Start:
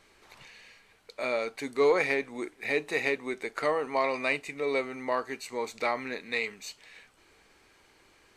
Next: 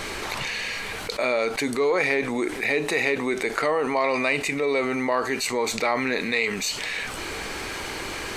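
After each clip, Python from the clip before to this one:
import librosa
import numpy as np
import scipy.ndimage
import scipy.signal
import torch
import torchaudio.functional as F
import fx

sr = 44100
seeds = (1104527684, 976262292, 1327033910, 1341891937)

y = fx.env_flatten(x, sr, amount_pct=70)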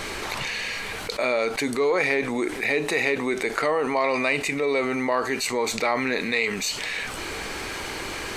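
y = x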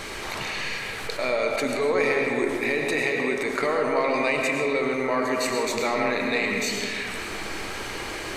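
y = fx.rev_freeverb(x, sr, rt60_s=2.3, hf_ratio=0.4, predelay_ms=70, drr_db=1.0)
y = y * librosa.db_to_amplitude(-3.0)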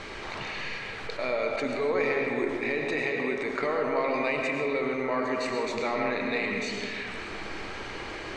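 y = fx.air_absorb(x, sr, metres=120.0)
y = y * librosa.db_to_amplitude(-3.5)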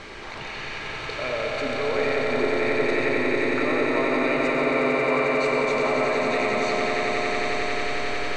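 y = fx.echo_swell(x, sr, ms=90, loudest=8, wet_db=-6.5)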